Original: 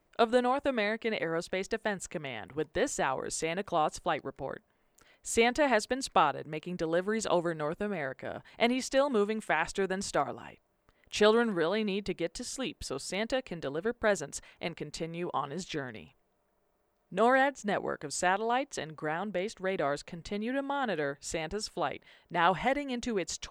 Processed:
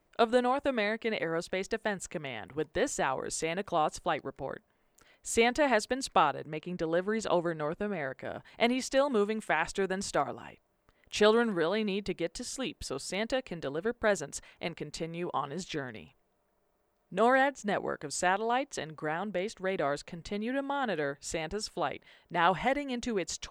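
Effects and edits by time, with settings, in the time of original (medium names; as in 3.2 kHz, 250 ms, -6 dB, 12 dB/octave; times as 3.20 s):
6.48–8.06 s: treble shelf 7.4 kHz -10.5 dB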